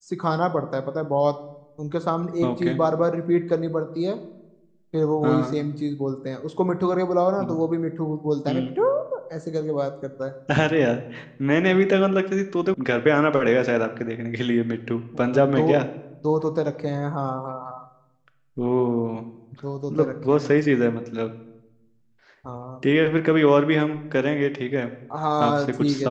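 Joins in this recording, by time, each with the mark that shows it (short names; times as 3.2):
12.74 sound cut off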